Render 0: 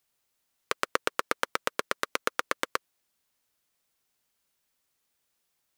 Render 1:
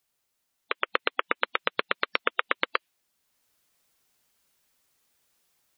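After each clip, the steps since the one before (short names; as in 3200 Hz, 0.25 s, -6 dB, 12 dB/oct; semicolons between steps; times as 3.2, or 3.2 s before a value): dynamic EQ 2700 Hz, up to +7 dB, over -49 dBFS, Q 1.1; AGC gain up to 6.5 dB; spectral gate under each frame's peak -15 dB strong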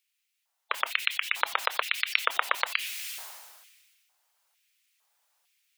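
LFO high-pass square 1.1 Hz 790–2400 Hz; sustainer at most 35 dB/s; gain -2.5 dB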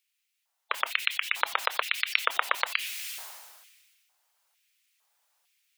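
nothing audible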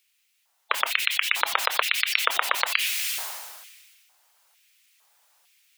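maximiser +10.5 dB; gain -1 dB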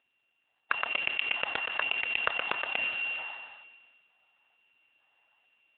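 sample sorter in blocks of 16 samples; AMR-NB 7.95 kbps 8000 Hz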